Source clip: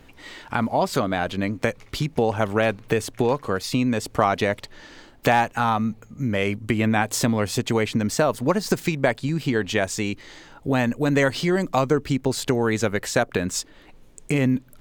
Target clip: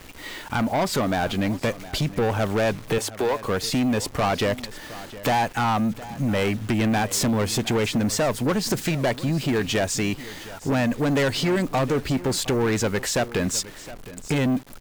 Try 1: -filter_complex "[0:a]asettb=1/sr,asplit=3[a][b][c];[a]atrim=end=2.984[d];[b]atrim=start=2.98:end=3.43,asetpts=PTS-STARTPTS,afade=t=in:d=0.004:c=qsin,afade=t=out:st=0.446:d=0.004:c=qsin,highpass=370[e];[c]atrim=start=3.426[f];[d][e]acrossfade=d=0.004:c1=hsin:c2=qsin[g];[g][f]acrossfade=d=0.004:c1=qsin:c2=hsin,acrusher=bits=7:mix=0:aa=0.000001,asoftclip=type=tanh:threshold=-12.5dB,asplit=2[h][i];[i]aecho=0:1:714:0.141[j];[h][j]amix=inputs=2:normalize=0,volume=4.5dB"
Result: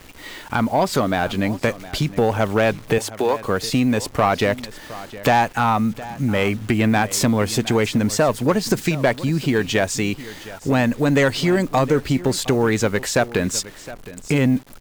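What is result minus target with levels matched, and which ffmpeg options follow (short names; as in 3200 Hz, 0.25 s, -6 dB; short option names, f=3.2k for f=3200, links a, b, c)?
soft clip: distortion -10 dB
-filter_complex "[0:a]asettb=1/sr,asplit=3[a][b][c];[a]atrim=end=2.984[d];[b]atrim=start=2.98:end=3.43,asetpts=PTS-STARTPTS,afade=t=in:d=0.004:c=qsin,afade=t=out:st=0.446:d=0.004:c=qsin,highpass=370[e];[c]atrim=start=3.426[f];[d][e]acrossfade=d=0.004:c1=hsin:c2=qsin[g];[g][f]acrossfade=d=0.004:c1=qsin:c2=hsin,acrusher=bits=7:mix=0:aa=0.000001,asoftclip=type=tanh:threshold=-22.5dB,asplit=2[h][i];[i]aecho=0:1:714:0.141[j];[h][j]amix=inputs=2:normalize=0,volume=4.5dB"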